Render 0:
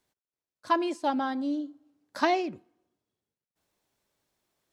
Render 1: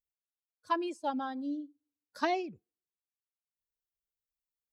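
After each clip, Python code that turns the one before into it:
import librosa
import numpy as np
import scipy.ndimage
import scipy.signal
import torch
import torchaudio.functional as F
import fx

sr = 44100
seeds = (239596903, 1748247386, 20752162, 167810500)

y = fx.bin_expand(x, sr, power=1.5)
y = F.gain(torch.from_numpy(y), -4.5).numpy()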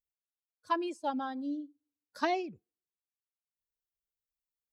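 y = x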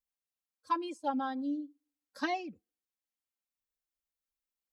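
y = x + 0.95 * np.pad(x, (int(3.8 * sr / 1000.0), 0))[:len(x)]
y = F.gain(torch.from_numpy(y), -4.0).numpy()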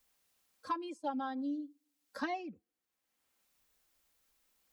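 y = fx.band_squash(x, sr, depth_pct=70)
y = F.gain(torch.from_numpy(y), -3.0).numpy()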